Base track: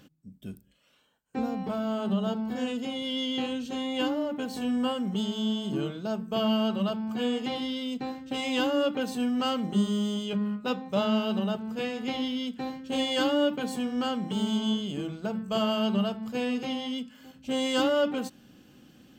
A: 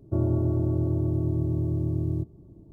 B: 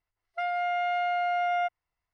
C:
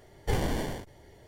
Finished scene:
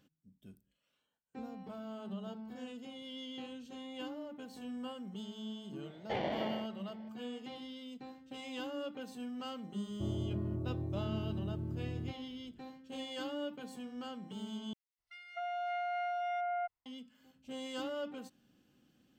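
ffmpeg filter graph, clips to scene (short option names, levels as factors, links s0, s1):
-filter_complex "[0:a]volume=0.178[s0];[3:a]highpass=270,equalizer=f=280:t=q:w=4:g=-5,equalizer=f=420:t=q:w=4:g=-7,equalizer=f=620:t=q:w=4:g=5,equalizer=f=1100:t=q:w=4:g=-7,equalizer=f=1600:t=q:w=4:g=-8,lowpass=f=3400:w=0.5412,lowpass=f=3400:w=1.3066[s1];[2:a]acrossover=split=2100[s2][s3];[s2]adelay=260[s4];[s4][s3]amix=inputs=2:normalize=0[s5];[s0]asplit=2[s6][s7];[s6]atrim=end=14.734[s8];[s5]atrim=end=2.13,asetpts=PTS-STARTPTS,volume=0.376[s9];[s7]atrim=start=16.856[s10];[s1]atrim=end=1.27,asetpts=PTS-STARTPTS,volume=0.841,afade=t=in:d=0.004:c=hsin,afade=t=out:st=1.266:d=0.004:c=hsin,adelay=5820[s11];[1:a]atrim=end=2.72,asetpts=PTS-STARTPTS,volume=0.224,afade=t=in:d=0.004:c=hsin,afade=t=out:st=2.716:d=0.004:c=hsin,adelay=9880[s12];[s8][s9]acrossfade=d=0.004:c1=hsin:c2=hsin[s13];[s13][s10]acrossfade=d=0.004:c1=hsin:c2=hsin[s14];[s14][s11][s12]amix=inputs=3:normalize=0"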